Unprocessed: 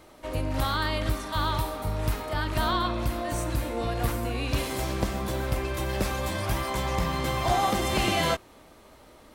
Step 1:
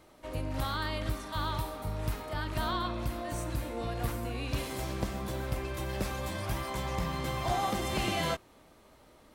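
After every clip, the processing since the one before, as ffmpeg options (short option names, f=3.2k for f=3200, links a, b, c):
-af "equalizer=f=150:w=1.5:g=2.5,volume=-6.5dB"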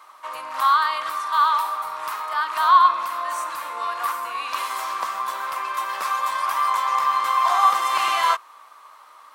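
-af "highpass=f=1.1k:t=q:w=7.2,volume=7dB"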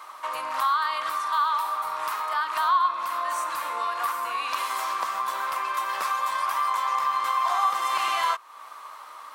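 -af "acompressor=threshold=-35dB:ratio=2,volume=5dB"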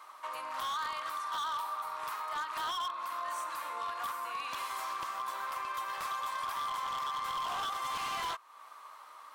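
-af "aeval=exprs='0.0841*(abs(mod(val(0)/0.0841+3,4)-2)-1)':c=same,volume=-9dB"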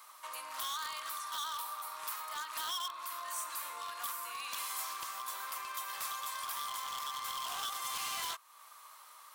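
-af "crystalizer=i=5.5:c=0,volume=-8.5dB"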